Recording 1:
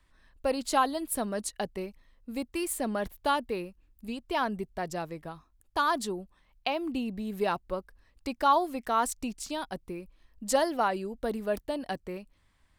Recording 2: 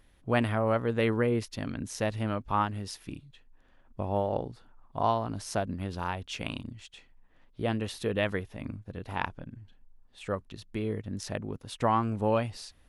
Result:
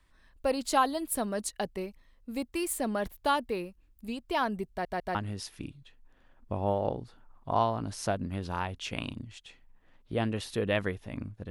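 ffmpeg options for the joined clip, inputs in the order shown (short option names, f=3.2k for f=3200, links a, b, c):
-filter_complex "[0:a]apad=whole_dur=11.5,atrim=end=11.5,asplit=3[a][b][c];[a]atrim=end=4.852[d];[b]atrim=start=4.698:end=4.852[e];[c]atrim=start=4.698:end=4.852[f];[1:a]atrim=start=2.628:end=8.98[g];[d][e]acrossfade=d=0.004:c1=hsin:c2=hsin[h];[h][f]acrossfade=d=0.004:c1=hsin:c2=hsin[i];[i][g]acrossfade=d=0.004:c1=hsin:c2=hsin"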